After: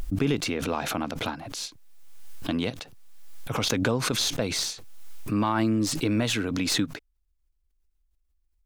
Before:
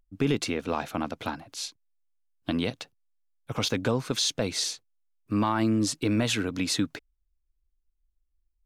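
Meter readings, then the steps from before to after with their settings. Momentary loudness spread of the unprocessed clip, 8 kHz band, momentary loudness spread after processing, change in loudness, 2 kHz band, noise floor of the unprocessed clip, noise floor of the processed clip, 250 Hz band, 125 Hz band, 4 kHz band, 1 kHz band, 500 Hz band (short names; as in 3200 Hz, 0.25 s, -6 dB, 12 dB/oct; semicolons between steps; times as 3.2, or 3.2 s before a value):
12 LU, +1.5 dB, 14 LU, +1.0 dB, +2.5 dB, -76 dBFS, -71 dBFS, +1.0 dB, +1.5 dB, +1.5 dB, +1.0 dB, +0.5 dB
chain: tracing distortion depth 0.021 ms; backwards sustainer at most 32 dB/s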